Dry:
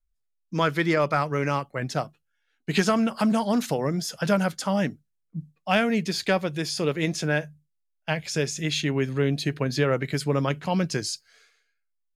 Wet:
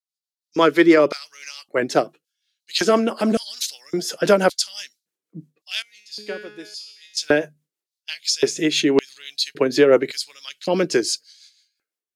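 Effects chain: AGC gain up to 12.5 dB; rotary speaker horn 6 Hz; 5.82–7.17 resonator 210 Hz, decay 0.72 s, harmonics all, mix 90%; LFO high-pass square 0.89 Hz 350–4300 Hz; gain -1 dB

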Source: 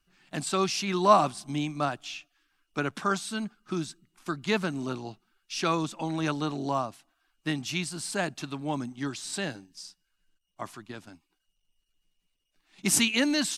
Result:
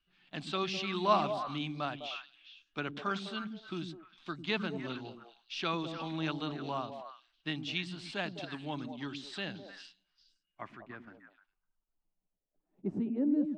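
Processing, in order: low-pass sweep 3400 Hz -> 390 Hz, 10.09–13.14; delay with a stepping band-pass 0.102 s, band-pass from 210 Hz, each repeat 1.4 oct, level -2.5 dB; gain -8.5 dB

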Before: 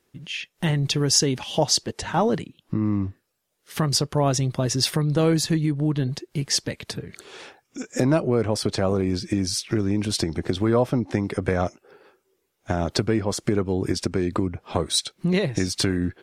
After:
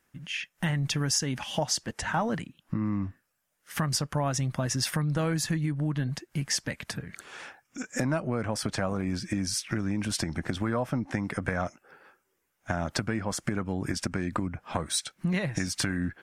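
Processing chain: fifteen-band EQ 100 Hz -4 dB, 400 Hz -11 dB, 1600 Hz +5 dB, 4000 Hz -7 dB; compressor 3:1, threshold -24 dBFS, peak gain reduction 6.5 dB; gain -1 dB

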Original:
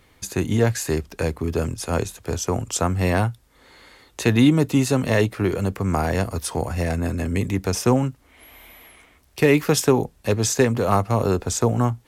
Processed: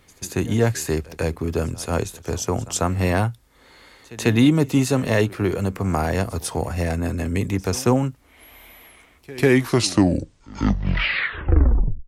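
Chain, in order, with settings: tape stop at the end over 2.84 s; pre-echo 0.145 s -20.5 dB

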